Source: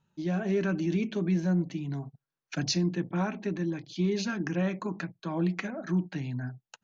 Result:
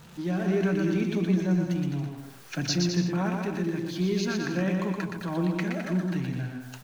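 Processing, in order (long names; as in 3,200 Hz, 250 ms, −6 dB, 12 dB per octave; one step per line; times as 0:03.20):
converter with a step at zero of −44 dBFS
bouncing-ball delay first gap 120 ms, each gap 0.75×, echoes 5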